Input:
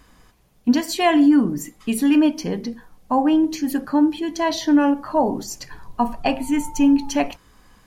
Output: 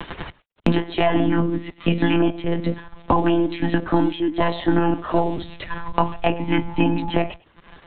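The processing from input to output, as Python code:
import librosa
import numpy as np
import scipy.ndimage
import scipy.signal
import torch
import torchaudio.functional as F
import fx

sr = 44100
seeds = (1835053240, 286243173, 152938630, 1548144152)

p1 = np.sign(x) * np.maximum(np.abs(x) - 10.0 ** (-50.0 / 20.0), 0.0)
p2 = fx.peak_eq(p1, sr, hz=100.0, db=-8.0, octaves=0.7)
p3 = p2 + fx.echo_single(p2, sr, ms=103, db=-23.5, dry=0)
p4 = fx.lpc_monotone(p3, sr, seeds[0], pitch_hz=170.0, order=16)
y = fx.band_squash(p4, sr, depth_pct=100)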